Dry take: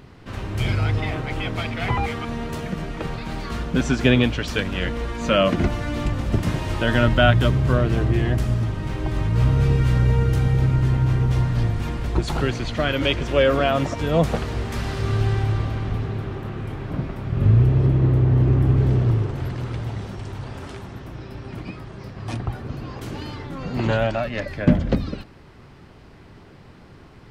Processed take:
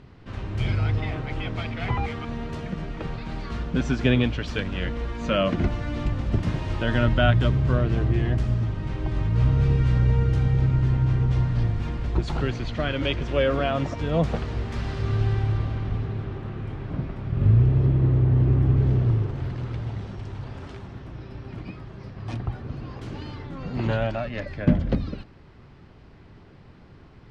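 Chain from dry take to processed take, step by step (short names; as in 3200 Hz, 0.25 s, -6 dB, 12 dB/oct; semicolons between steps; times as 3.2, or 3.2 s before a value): LPF 5600 Hz 12 dB/oct; low shelf 200 Hz +4.5 dB; gain -5.5 dB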